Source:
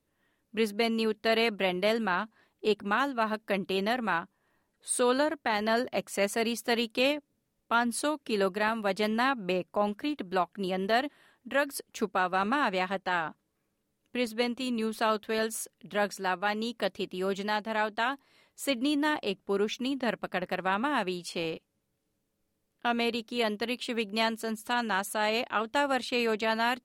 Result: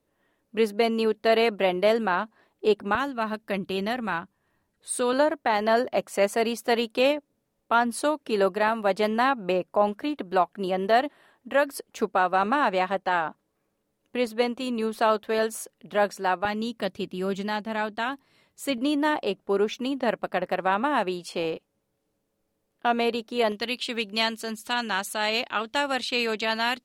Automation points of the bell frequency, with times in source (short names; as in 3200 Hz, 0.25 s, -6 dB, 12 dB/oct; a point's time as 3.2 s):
bell +7 dB 2.1 oct
590 Hz
from 2.95 s 81 Hz
from 5.13 s 670 Hz
from 16.45 s 130 Hz
from 18.78 s 640 Hz
from 23.52 s 4200 Hz